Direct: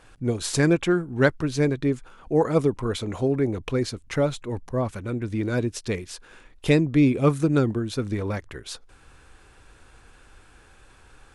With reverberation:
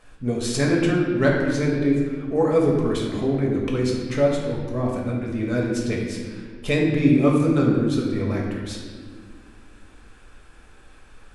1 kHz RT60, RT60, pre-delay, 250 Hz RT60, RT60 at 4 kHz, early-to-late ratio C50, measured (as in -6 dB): 1.4 s, 1.7 s, 4 ms, 2.9 s, 1.2 s, 1.5 dB